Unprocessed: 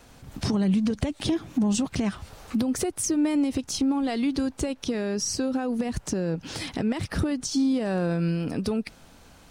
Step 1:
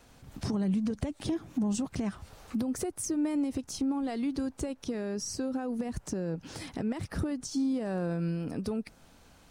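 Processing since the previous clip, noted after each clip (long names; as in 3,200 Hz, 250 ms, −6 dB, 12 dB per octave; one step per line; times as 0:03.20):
dynamic equaliser 3,300 Hz, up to −6 dB, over −49 dBFS, Q 0.88
level −6 dB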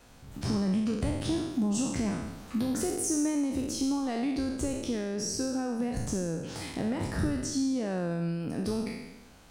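peak hold with a decay on every bin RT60 1.06 s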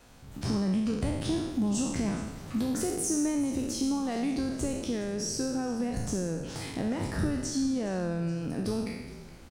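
echo with shifted repeats 418 ms, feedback 61%, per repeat −56 Hz, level −17 dB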